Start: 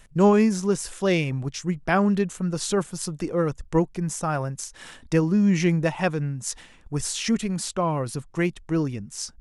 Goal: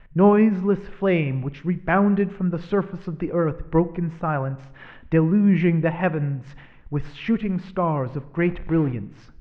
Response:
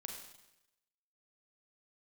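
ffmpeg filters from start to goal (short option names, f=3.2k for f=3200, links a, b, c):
-filter_complex "[0:a]asettb=1/sr,asplit=3[a][b][c];[a]atrim=end=8.424[d];[b]atrim=start=8.42:end=8.92,asetpts=PTS-STARTPTS,afade=t=in:d=0.004:c=qsin,afade=t=out:st=0.496:d=0.004:c=qsin,aeval=exprs='val(0)+0.5*0.0237*sgn(val(0))':c=same[e];[c]atrim=start=8.916[f];[d][e]acrossfade=d=0.004:c1=hsin:c2=qsin[g];[g][f]acrossfade=d=0.004:c1=qsin:c2=hsin,lowpass=f=2.5k:w=0.5412,lowpass=f=2.5k:w=1.3066,asplit=2[h][i];[1:a]atrim=start_sample=2205,lowshelf=f=170:g=10[j];[i][j]afir=irnorm=-1:irlink=0,volume=-8.5dB[k];[h][k]amix=inputs=2:normalize=0"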